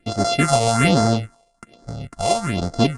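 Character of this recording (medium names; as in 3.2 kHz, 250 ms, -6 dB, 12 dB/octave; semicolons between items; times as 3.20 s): a buzz of ramps at a fixed pitch in blocks of 64 samples; phasing stages 4, 1.2 Hz, lowest notch 260–2700 Hz; AAC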